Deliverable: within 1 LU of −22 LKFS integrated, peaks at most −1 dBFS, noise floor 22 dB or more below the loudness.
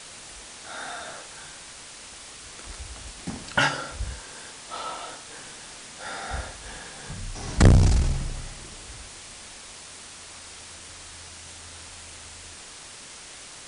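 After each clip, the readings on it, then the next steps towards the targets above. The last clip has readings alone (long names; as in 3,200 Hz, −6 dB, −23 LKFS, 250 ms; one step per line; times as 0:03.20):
background noise floor −44 dBFS; target noise floor −53 dBFS; integrated loudness −30.5 LKFS; sample peak −4.5 dBFS; target loudness −22.0 LKFS
→ noise reduction from a noise print 9 dB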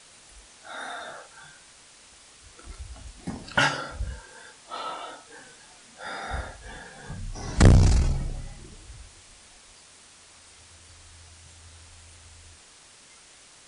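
background noise floor −53 dBFS; integrated loudness −26.5 LKFS; sample peak −4.5 dBFS; target loudness −22.0 LKFS
→ level +4.5 dB
brickwall limiter −1 dBFS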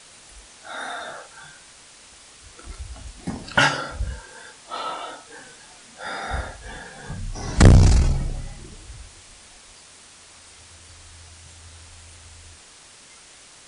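integrated loudness −22.5 LKFS; sample peak −1.0 dBFS; background noise floor −48 dBFS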